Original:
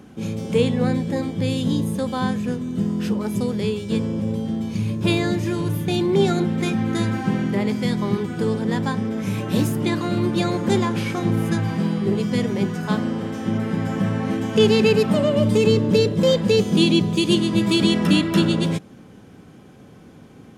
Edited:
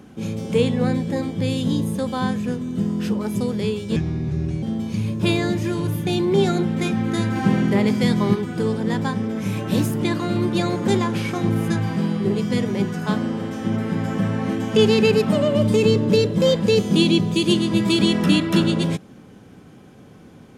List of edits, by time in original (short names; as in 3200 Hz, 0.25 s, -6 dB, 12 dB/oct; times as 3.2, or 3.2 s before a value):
3.96–4.44 speed 72%
7.17–8.16 gain +3.5 dB